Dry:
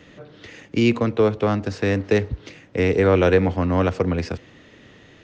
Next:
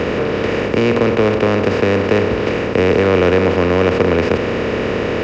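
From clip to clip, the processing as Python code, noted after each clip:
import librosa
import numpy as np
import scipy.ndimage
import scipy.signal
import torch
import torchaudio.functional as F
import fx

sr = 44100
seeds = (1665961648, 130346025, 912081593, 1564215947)

y = fx.bin_compress(x, sr, power=0.2)
y = fx.high_shelf(y, sr, hz=5200.0, db=-5.5)
y = y * 10.0 ** (-1.5 / 20.0)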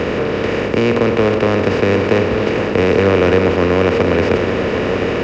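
y = x + 10.0 ** (-8.5 / 20.0) * np.pad(x, (int(1153 * sr / 1000.0), 0))[:len(x)]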